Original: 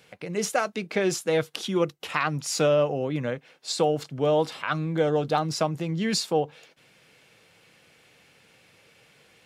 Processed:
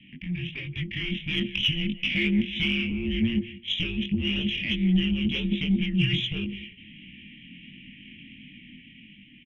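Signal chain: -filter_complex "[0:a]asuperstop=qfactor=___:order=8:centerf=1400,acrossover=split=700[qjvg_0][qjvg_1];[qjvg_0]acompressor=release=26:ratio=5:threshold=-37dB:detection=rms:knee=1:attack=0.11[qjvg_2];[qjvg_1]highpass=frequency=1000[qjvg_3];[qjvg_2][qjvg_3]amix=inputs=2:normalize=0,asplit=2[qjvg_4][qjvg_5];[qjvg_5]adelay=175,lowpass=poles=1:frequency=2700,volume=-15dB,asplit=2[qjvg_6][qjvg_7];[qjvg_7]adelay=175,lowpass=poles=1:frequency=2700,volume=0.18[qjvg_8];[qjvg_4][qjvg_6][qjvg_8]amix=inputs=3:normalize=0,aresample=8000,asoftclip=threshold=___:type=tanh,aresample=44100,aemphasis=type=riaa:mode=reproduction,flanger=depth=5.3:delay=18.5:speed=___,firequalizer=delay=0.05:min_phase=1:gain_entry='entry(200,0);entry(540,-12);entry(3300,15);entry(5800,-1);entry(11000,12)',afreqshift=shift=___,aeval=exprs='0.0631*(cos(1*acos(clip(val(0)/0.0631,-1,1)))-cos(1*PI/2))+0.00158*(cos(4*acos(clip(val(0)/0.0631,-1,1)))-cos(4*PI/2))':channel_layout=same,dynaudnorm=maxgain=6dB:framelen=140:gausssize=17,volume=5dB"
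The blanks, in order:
0.88, -31.5dB, 1.4, -350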